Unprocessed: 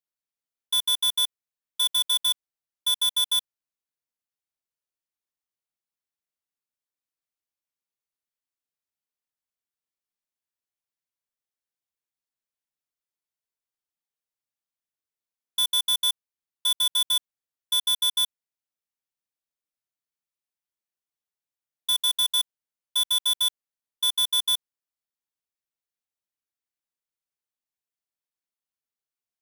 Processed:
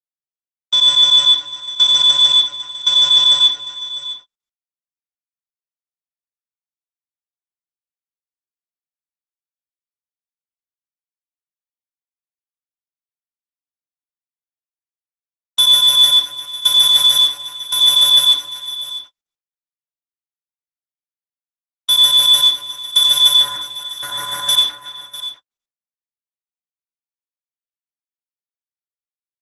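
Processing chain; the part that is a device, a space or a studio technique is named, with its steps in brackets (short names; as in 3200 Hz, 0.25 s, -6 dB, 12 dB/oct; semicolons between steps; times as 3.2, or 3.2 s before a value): 23.35–24.49 resonant high shelf 2300 Hz -9 dB, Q 3; echo 0.65 s -16.5 dB; speakerphone in a meeting room (reverb RT60 0.45 s, pre-delay 75 ms, DRR -0.5 dB; speakerphone echo 0.37 s, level -15 dB; AGC gain up to 14 dB; gate -34 dBFS, range -56 dB; Opus 12 kbps 48000 Hz)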